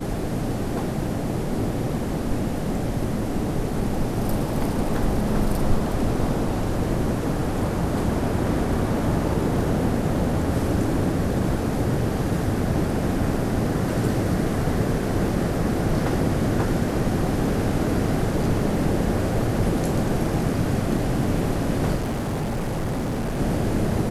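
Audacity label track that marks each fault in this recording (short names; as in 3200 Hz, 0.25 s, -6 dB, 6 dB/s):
21.950000	23.400000	clipped -22.5 dBFS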